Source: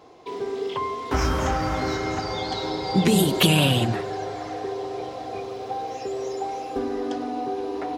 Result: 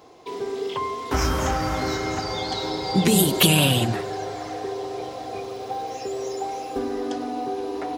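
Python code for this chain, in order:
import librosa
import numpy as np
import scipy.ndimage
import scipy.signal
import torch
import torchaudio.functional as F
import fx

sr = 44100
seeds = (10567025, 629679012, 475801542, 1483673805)

y = fx.high_shelf(x, sr, hz=6800.0, db=9.5)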